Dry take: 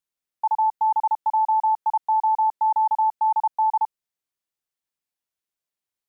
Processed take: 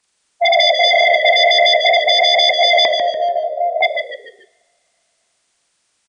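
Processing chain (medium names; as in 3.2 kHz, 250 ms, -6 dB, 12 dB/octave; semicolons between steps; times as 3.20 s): frequency axis rescaled in octaves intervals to 82%; 2.85–3.81 s: feedback comb 660 Hz, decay 0.44 s, mix 90%; sine folder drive 13 dB, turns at -15.5 dBFS; frequency-shifting echo 145 ms, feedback 36%, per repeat -72 Hz, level -6 dB; two-slope reverb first 0.78 s, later 3.1 s, from -26 dB, DRR 14.5 dB; trim +6 dB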